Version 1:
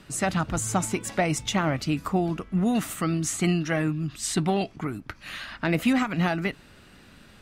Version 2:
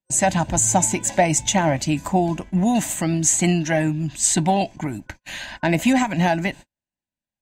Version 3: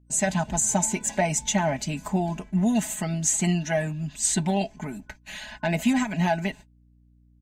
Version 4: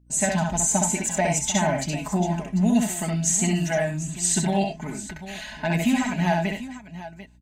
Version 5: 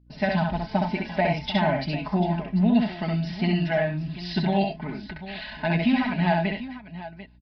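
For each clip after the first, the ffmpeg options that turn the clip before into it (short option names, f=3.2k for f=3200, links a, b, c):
-af "agate=range=-47dB:threshold=-40dB:ratio=16:detection=peak,superequalizer=7b=0.501:8b=1.58:9b=1.78:10b=0.251:15b=2.82,volume=4.5dB"
-af "aecho=1:1:4.7:0.8,aeval=exprs='val(0)+0.00355*(sin(2*PI*60*n/s)+sin(2*PI*2*60*n/s)/2+sin(2*PI*3*60*n/s)/3+sin(2*PI*4*60*n/s)/4+sin(2*PI*5*60*n/s)/5)':c=same,volume=-7.5dB"
-af "aecho=1:1:66|95|744:0.668|0.251|0.2"
-af "aresample=11025,aresample=44100"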